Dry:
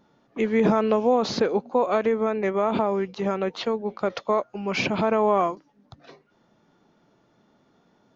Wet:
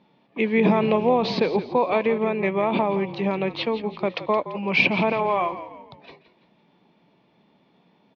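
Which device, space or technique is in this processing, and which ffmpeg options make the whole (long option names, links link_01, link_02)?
frequency-shifting delay pedal into a guitar cabinet: -filter_complex "[0:a]asettb=1/sr,asplit=3[link_01][link_02][link_03];[link_01]atrim=end=5.124[link_04];[link_02]atrim=start=5.12:end=5.52,asetpts=PTS-STARTPTS,afade=type=in:duration=0.004:curve=qsin,afade=type=out:start_time=0.396:duration=0.004:curve=qsin,highpass=frequency=640:poles=1[link_05];[link_03]atrim=start=5.516[link_06];[link_04][link_05]acrossfade=duration=0.004:curve1=hsin:curve2=qsin[link_07];[link_07][link_06]acrossfade=duration=0.004:curve1=qsin:curve2=hsin,equalizer=frequency=4600:width=0.8:gain=6,asplit=5[link_08][link_09][link_10][link_11][link_12];[link_09]adelay=169,afreqshift=-46,volume=-13dB[link_13];[link_10]adelay=338,afreqshift=-92,volume=-20.5dB[link_14];[link_11]adelay=507,afreqshift=-138,volume=-28.1dB[link_15];[link_12]adelay=676,afreqshift=-184,volume=-35.6dB[link_16];[link_08][link_13][link_14][link_15][link_16]amix=inputs=5:normalize=0,highpass=76,equalizer=frequency=96:width_type=q:width=4:gain=-9,equalizer=frequency=180:width_type=q:width=4:gain=5,equalizer=frequency=960:width_type=q:width=4:gain=4,equalizer=frequency=1400:width_type=q:width=4:gain=-10,equalizer=frequency=2400:width_type=q:width=4:gain=8,lowpass=frequency=3900:width=0.5412,lowpass=frequency=3900:width=1.3066"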